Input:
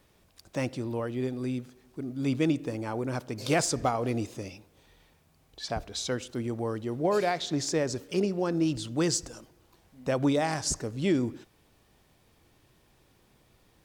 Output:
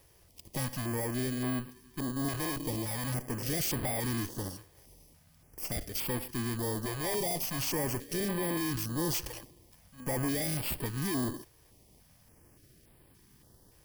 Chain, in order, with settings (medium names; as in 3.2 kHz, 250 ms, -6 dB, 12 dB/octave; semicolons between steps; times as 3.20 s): bit-reversed sample order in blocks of 32 samples; valve stage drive 36 dB, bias 0.65; step-sequenced notch 3.5 Hz 230–6100 Hz; trim +7 dB